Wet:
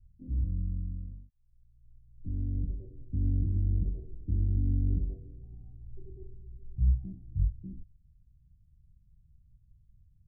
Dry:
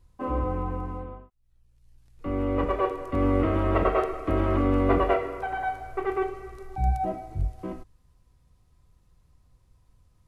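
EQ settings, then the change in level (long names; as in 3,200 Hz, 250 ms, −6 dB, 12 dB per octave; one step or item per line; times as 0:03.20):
inverse Chebyshev low-pass filter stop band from 1,100 Hz, stop band 80 dB
0.0 dB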